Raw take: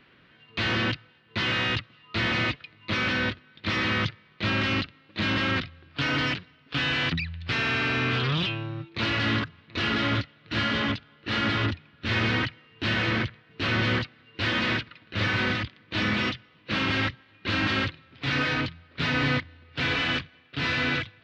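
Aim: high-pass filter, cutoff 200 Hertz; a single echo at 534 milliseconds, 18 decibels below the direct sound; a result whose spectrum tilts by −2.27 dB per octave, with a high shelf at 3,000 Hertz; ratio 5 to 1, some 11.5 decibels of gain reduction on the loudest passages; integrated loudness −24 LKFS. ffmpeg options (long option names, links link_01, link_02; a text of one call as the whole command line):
ffmpeg -i in.wav -af "highpass=200,highshelf=frequency=3000:gain=-8.5,acompressor=threshold=-38dB:ratio=5,aecho=1:1:534:0.126,volume=16.5dB" out.wav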